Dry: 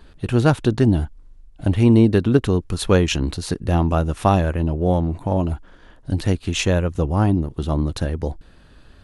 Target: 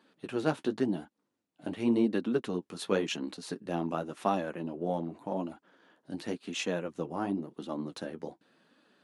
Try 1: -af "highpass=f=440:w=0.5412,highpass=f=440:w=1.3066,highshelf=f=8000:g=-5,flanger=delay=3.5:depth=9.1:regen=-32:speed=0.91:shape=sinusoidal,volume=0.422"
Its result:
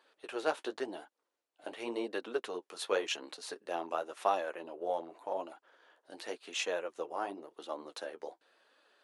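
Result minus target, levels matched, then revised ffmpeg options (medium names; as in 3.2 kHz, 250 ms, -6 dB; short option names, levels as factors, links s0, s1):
250 Hz band -9.5 dB
-af "highpass=f=200:w=0.5412,highpass=f=200:w=1.3066,highshelf=f=8000:g=-5,flanger=delay=3.5:depth=9.1:regen=-32:speed=0.91:shape=sinusoidal,volume=0.422"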